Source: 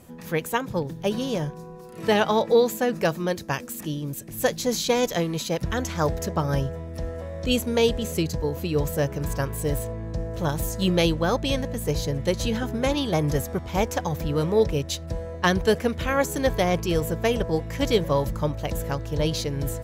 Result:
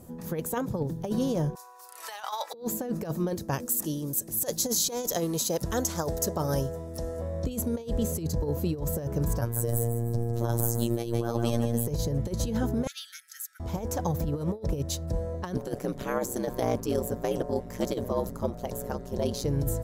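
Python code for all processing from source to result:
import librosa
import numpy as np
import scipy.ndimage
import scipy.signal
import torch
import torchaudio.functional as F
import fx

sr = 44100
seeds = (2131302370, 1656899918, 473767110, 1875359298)

y = fx.chain(x, sr, fx.highpass(hz=930.0, slope=24),
    fx.high_shelf(hz=2300.0, db=4.0),
    fx.over_compress(threshold_db=-30.0, ratio=-0.5), at=(1.55, 2.54))
y = fx.chain(y, sr, fx.bass_treble(bass_db=-7, treble_db=8),
    fx.notch(hz=2300.0, q=22.0), at=(3.66, 7.19))
y = fx.chain(y, sr, fx.high_shelf(hz=9000.0, db=7.0),
    fx.robotise(hz=117.0),
    fx.echo_feedback(ms=154, feedback_pct=41, wet_db=-11.0), at=(9.41, 11.87))
y = fx.chain(y, sr, fx.brickwall_highpass(low_hz=1300.0),
    fx.upward_expand(threshold_db=-44.0, expansion=1.5), at=(12.87, 13.6))
y = fx.chain(y, sr, fx.highpass(hz=210.0, slope=6),
    fx.ring_mod(carrier_hz=62.0), at=(15.54, 19.44))
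y = fx.peak_eq(y, sr, hz=2500.0, db=-13.0, octaves=1.9)
y = fx.over_compress(y, sr, threshold_db=-27.0, ratio=-0.5)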